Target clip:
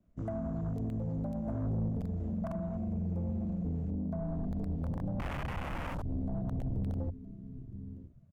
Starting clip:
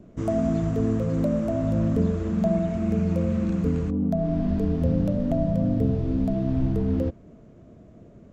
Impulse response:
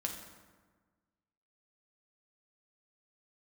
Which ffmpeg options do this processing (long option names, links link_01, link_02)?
-filter_complex "[0:a]asplit=3[link_01][link_02][link_03];[link_01]afade=type=out:start_time=5.18:duration=0.02[link_04];[link_02]bass=frequency=250:gain=13,treble=frequency=4000:gain=2,afade=type=in:start_time=5.18:duration=0.02,afade=type=out:start_time=6.01:duration=0.02[link_05];[link_03]afade=type=in:start_time=6.01:duration=0.02[link_06];[link_04][link_05][link_06]amix=inputs=3:normalize=0,aecho=1:1:968|1936:0.141|0.0254,aeval=exprs='(mod(4.47*val(0)+1,2)-1)/4.47':channel_layout=same,equalizer=frequency=390:width_type=o:width=0.75:gain=-11,bandreject=frequency=50:width_type=h:width=6,bandreject=frequency=100:width_type=h:width=6,bandreject=frequency=150:width_type=h:width=6,alimiter=limit=-15.5dB:level=0:latency=1:release=35,acrossover=split=130[link_07][link_08];[link_08]acompressor=threshold=-29dB:ratio=5[link_09];[link_07][link_09]amix=inputs=2:normalize=0,afwtdn=0.0178,asettb=1/sr,asplit=3[link_10][link_11][link_12];[link_10]atrim=end=1.454[link_13];[link_11]atrim=start=1.45:end=1.89,asetpts=PTS-STARTPTS,afade=type=in:duration=0.004:curve=qsin,afade=type=out:start_time=0.436:duration=0.004:curve=qsin,asplit=2[link_14][link_15];[link_15]adelay=19,volume=-4dB[link_16];[link_14][link_16]amix=inputs=2:normalize=0,atrim=end_sample=19404[link_17];[link_12]atrim=start=1.886[link_18];[link_13][link_17]acrossfade=duration=0.004:curve1=hsin:curve2=qsin[link_19];[link_19][link_18]acrossfade=duration=0.004:curve1=qsin:curve2=hsin,asoftclip=type=tanh:threshold=-23.5dB,volume=-4dB" -ar 44100 -c:a libmp3lame -b:a 96k